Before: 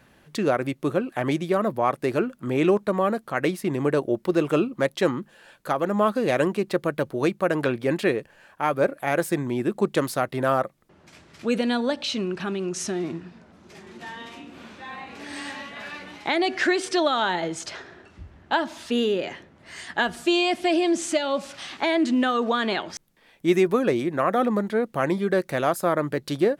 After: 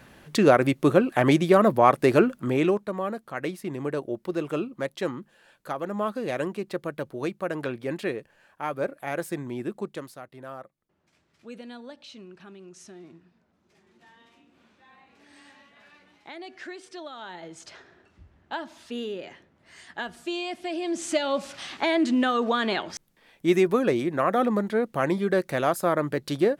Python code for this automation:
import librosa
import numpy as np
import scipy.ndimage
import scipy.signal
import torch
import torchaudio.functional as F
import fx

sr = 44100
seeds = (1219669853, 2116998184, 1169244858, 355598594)

y = fx.gain(x, sr, db=fx.line((2.31, 5.0), (2.88, -7.0), (9.69, -7.0), (10.19, -18.0), (17.15, -18.0), (17.71, -10.0), (20.75, -10.0), (21.18, -1.0)))